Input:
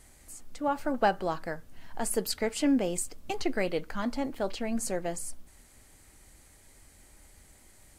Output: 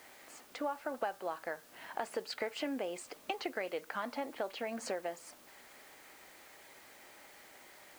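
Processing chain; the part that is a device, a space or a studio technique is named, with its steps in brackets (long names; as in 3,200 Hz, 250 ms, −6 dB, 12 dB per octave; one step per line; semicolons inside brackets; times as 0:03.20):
baby monitor (band-pass filter 480–3,100 Hz; downward compressor, threshold −43 dBFS, peak gain reduction 21 dB; white noise bed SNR 20 dB)
level +8 dB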